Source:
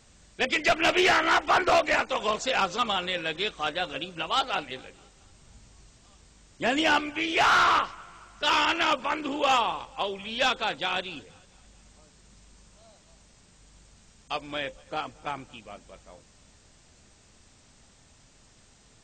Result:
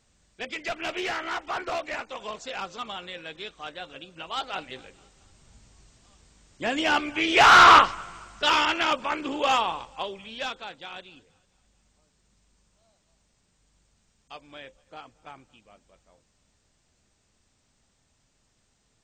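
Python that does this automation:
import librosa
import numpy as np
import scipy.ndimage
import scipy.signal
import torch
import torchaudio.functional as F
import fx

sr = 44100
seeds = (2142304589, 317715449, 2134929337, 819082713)

y = fx.gain(x, sr, db=fx.line((4.03, -9.0), (4.79, -2.0), (6.8, -2.0), (7.73, 10.0), (8.7, 0.0), (9.8, 0.0), (10.75, -11.5)))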